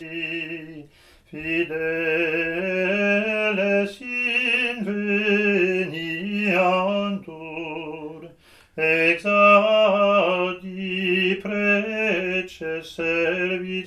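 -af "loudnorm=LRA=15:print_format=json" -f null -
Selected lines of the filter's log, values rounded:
"input_i" : "-21.3",
"input_tp" : "-3.6",
"input_lra" : "5.0",
"input_thresh" : "-31.8",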